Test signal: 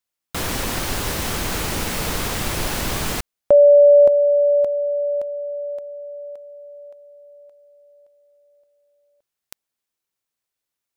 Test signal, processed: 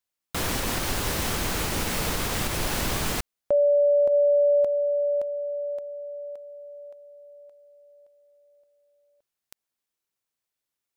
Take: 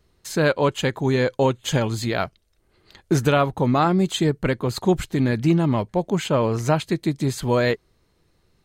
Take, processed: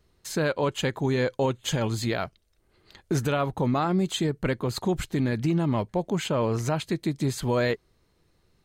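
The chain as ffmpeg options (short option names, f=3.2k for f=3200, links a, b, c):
-af "alimiter=limit=-13.5dB:level=0:latency=1:release=85,volume=-2.5dB"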